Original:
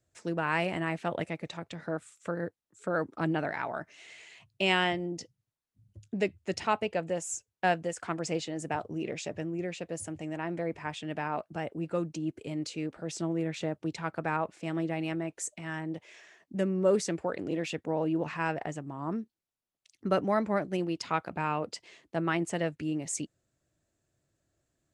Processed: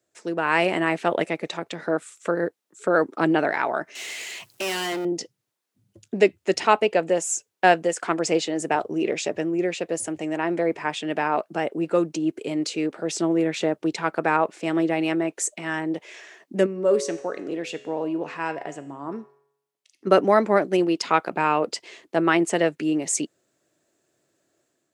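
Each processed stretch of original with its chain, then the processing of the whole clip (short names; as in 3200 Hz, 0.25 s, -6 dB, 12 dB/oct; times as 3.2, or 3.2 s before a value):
3.95–5.05 G.711 law mismatch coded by mu + high shelf 4300 Hz +10.5 dB + tube stage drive 36 dB, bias 0.5
16.66–20.07 resonator 140 Hz, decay 0.77 s + de-hum 125.3 Hz, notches 31
whole clip: HPF 260 Hz 12 dB/oct; bell 390 Hz +4 dB 0.49 oct; AGC gain up to 6 dB; gain +4 dB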